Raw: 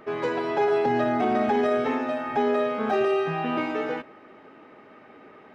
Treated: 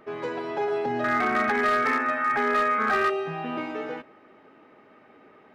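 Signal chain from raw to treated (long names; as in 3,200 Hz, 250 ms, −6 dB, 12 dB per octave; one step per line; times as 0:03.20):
0:01.04–0:03.10: flat-topped bell 1,600 Hz +15 dB 1.3 octaves
gain into a clipping stage and back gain 13 dB
level −4.5 dB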